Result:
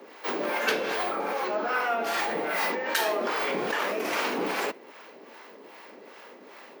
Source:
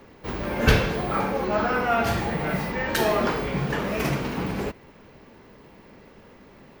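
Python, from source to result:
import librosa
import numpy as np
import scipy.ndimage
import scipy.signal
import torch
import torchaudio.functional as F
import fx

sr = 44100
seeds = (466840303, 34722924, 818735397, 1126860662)

p1 = scipy.signal.sosfilt(scipy.signal.bessel(6, 430.0, 'highpass', norm='mag', fs=sr, output='sos'), x)
p2 = fx.over_compress(p1, sr, threshold_db=-33.0, ratio=-0.5)
p3 = p1 + (p2 * 10.0 ** (0.0 / 20.0))
y = fx.harmonic_tremolo(p3, sr, hz=2.5, depth_pct=70, crossover_hz=640.0)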